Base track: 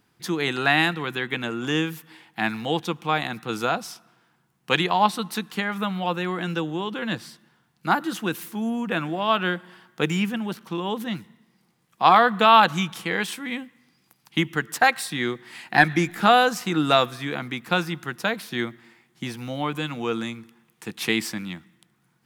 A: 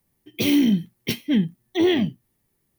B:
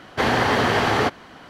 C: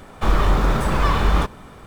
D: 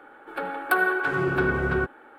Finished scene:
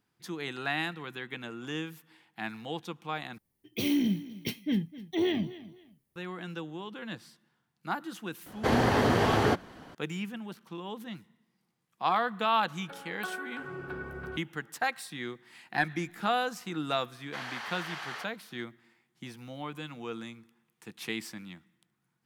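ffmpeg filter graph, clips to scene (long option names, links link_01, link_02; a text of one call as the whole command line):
ffmpeg -i bed.wav -i cue0.wav -i cue1.wav -i cue2.wav -i cue3.wav -filter_complex "[2:a]asplit=2[link_01][link_02];[0:a]volume=-12dB[link_03];[1:a]aecho=1:1:255|510:0.141|0.0367[link_04];[link_01]equalizer=frequency=2300:width=0.32:gain=-8.5[link_05];[link_02]highpass=1200[link_06];[link_03]asplit=2[link_07][link_08];[link_07]atrim=end=3.384[link_09];[link_04]atrim=end=2.78,asetpts=PTS-STARTPTS,volume=-9dB[link_10];[link_08]atrim=start=6.156[link_11];[link_05]atrim=end=1.49,asetpts=PTS-STARTPTS,volume=-1.5dB,afade=type=in:duration=0.004:curve=hsin,afade=type=out:start_time=1.486:duration=0.004:curve=hsin,adelay=8460[link_12];[4:a]atrim=end=2.18,asetpts=PTS-STARTPTS,volume=-16dB,afade=type=in:duration=0.004:curve=hsin,afade=type=out:start_time=2.176:duration=0.004:curve=hsin,adelay=552132S[link_13];[link_06]atrim=end=1.49,asetpts=PTS-STARTPTS,volume=-15.5dB,afade=type=in:duration=0.004:curve=hsin,afade=type=out:start_time=1.486:duration=0.004:curve=hsin,adelay=17150[link_14];[link_09][link_10]acrossfade=duration=0.004:curve1=hsin:curve2=hsin[link_15];[link_15][link_11]acrossfade=duration=0.004:curve1=hsin:curve2=hsin[link_16];[link_16][link_12][link_13][link_14]amix=inputs=4:normalize=0" out.wav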